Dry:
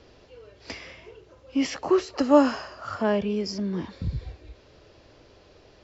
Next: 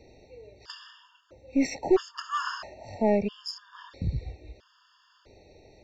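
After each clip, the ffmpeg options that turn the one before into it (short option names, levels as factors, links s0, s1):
-af "aeval=exprs='0.531*(cos(1*acos(clip(val(0)/0.531,-1,1)))-cos(1*PI/2))+0.0299*(cos(6*acos(clip(val(0)/0.531,-1,1)))-cos(6*PI/2))':c=same,afftfilt=real='re*gt(sin(2*PI*0.76*pts/sr)*(1-2*mod(floor(b*sr/1024/910),2)),0)':imag='im*gt(sin(2*PI*0.76*pts/sr)*(1-2*mod(floor(b*sr/1024/910),2)),0)':win_size=1024:overlap=0.75"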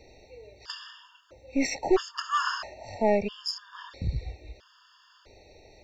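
-af "equalizer=f=190:t=o:w=2.9:g=-8,volume=1.68"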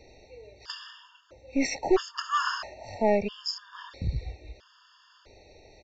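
-af "aresample=16000,aresample=44100"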